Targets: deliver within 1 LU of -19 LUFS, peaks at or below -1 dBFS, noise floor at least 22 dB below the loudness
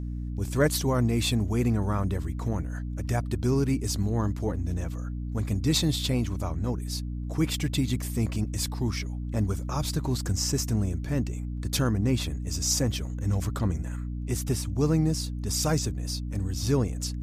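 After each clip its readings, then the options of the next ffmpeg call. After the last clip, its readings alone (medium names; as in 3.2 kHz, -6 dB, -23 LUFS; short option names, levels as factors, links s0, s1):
hum 60 Hz; highest harmonic 300 Hz; hum level -30 dBFS; loudness -28.0 LUFS; peak level -11.5 dBFS; loudness target -19.0 LUFS
-> -af "bandreject=f=60:t=h:w=4,bandreject=f=120:t=h:w=4,bandreject=f=180:t=h:w=4,bandreject=f=240:t=h:w=4,bandreject=f=300:t=h:w=4"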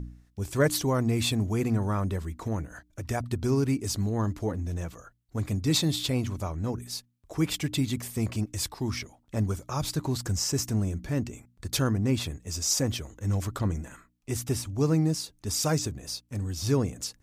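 hum not found; loudness -29.0 LUFS; peak level -12.5 dBFS; loudness target -19.0 LUFS
-> -af "volume=3.16"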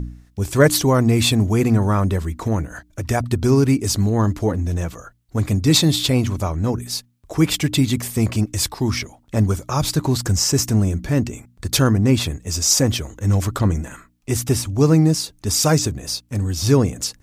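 loudness -19.0 LUFS; peak level -2.5 dBFS; noise floor -56 dBFS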